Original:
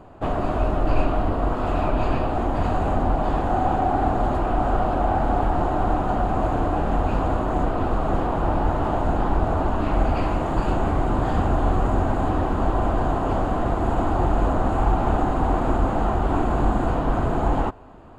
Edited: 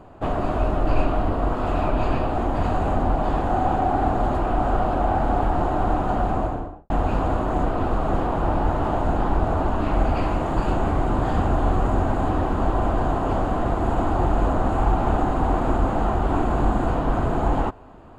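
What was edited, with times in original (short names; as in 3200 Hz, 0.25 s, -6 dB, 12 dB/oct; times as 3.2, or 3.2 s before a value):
6.27–6.9 studio fade out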